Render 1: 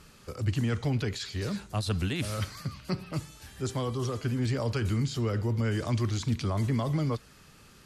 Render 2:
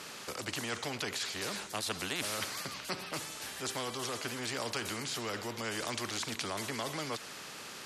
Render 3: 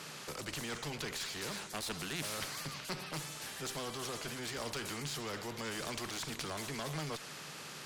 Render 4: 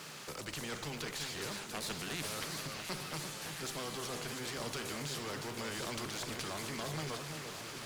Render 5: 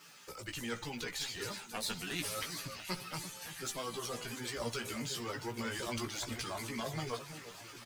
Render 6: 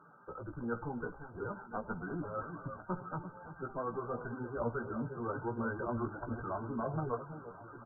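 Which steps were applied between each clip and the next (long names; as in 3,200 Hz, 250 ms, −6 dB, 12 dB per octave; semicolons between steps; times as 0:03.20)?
high-pass filter 350 Hz 12 dB per octave; high-shelf EQ 7,000 Hz −9 dB; every bin compressed towards the loudest bin 2 to 1; level +2.5 dB
parametric band 150 Hz +12.5 dB 0.23 octaves; asymmetric clip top −39.5 dBFS; level −1.5 dB
on a send: delay that swaps between a low-pass and a high-pass 344 ms, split 1,000 Hz, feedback 81%, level −6 dB; on the sum: bit reduction 10 bits; level −1 dB
spectral dynamics exaggerated over time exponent 2; double-tracking delay 17 ms −5 dB; level +5.5 dB
linear-phase brick-wall low-pass 1,600 Hz; level +3.5 dB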